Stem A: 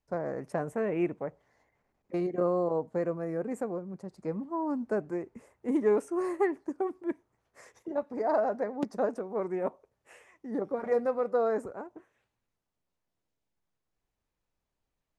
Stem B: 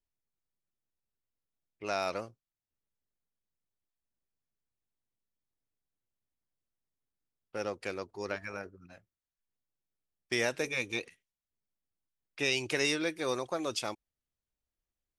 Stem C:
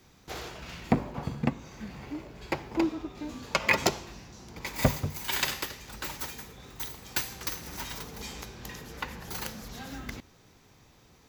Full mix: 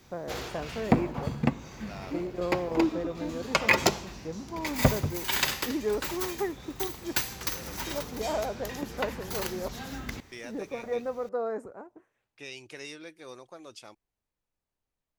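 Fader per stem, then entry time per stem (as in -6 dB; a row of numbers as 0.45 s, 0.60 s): -4.0 dB, -12.5 dB, +2.0 dB; 0.00 s, 0.00 s, 0.00 s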